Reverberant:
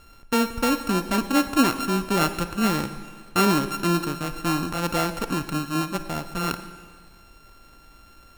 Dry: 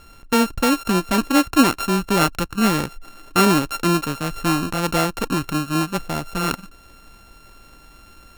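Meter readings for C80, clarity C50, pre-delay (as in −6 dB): 12.5 dB, 10.5 dB, 35 ms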